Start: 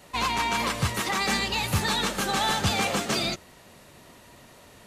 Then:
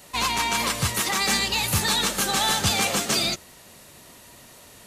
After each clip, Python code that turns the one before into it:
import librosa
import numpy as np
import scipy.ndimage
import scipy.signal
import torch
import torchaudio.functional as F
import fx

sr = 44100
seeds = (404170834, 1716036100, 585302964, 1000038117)

y = fx.high_shelf(x, sr, hz=4300.0, db=10.5)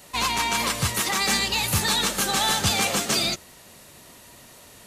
y = x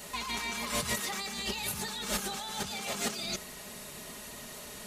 y = x + 0.53 * np.pad(x, (int(4.8 * sr / 1000.0), 0))[:len(x)]
y = fx.over_compress(y, sr, threshold_db=-31.0, ratio=-1.0)
y = y * librosa.db_to_amplitude(-5.0)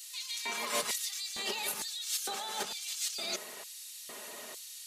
y = fx.filter_lfo_highpass(x, sr, shape='square', hz=1.1, low_hz=410.0, high_hz=4100.0, q=1.1)